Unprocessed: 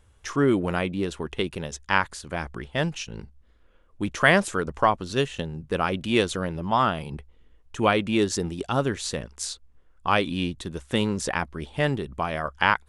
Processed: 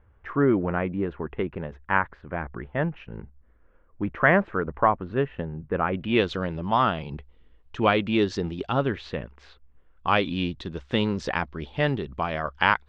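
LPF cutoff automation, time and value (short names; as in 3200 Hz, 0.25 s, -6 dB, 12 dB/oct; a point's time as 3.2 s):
LPF 24 dB/oct
5.85 s 2000 Hz
6.33 s 4300 Hz
8.56 s 4300 Hz
9.52 s 2400 Hz
10.23 s 4600 Hz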